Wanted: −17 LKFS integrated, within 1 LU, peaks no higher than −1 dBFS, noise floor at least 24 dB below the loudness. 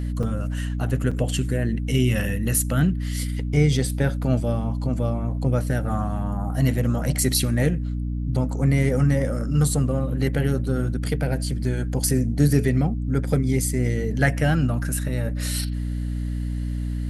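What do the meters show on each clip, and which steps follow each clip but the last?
number of dropouts 2; longest dropout 5.1 ms; mains hum 60 Hz; hum harmonics up to 300 Hz; level of the hum −24 dBFS; integrated loudness −23.5 LKFS; sample peak −5.5 dBFS; target loudness −17.0 LKFS
→ repair the gap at 0:00.23/0:01.11, 5.1 ms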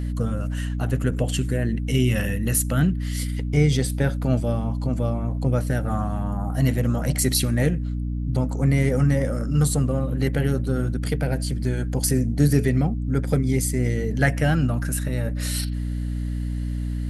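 number of dropouts 0; mains hum 60 Hz; hum harmonics up to 300 Hz; level of the hum −24 dBFS
→ mains-hum notches 60/120/180/240/300 Hz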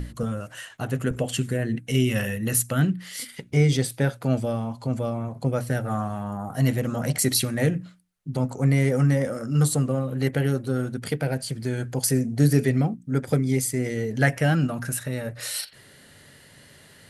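mains hum none found; integrated loudness −25.0 LKFS; sample peak −6.0 dBFS; target loudness −17.0 LKFS
→ level +8 dB
brickwall limiter −1 dBFS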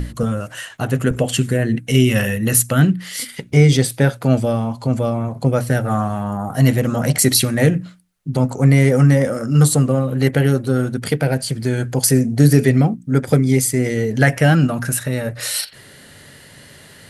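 integrated loudness −17.0 LKFS; sample peak −1.0 dBFS; background noise floor −44 dBFS

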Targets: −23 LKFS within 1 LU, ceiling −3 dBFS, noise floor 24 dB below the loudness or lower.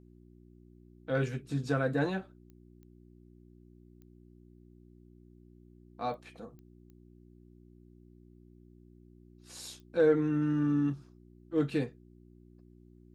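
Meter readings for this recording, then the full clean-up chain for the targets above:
number of clicks 7; mains hum 60 Hz; hum harmonics up to 360 Hz; level of the hum −55 dBFS; integrated loudness −32.0 LKFS; sample peak −14.5 dBFS; target loudness −23.0 LKFS
→ click removal
hum removal 60 Hz, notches 6
level +9 dB

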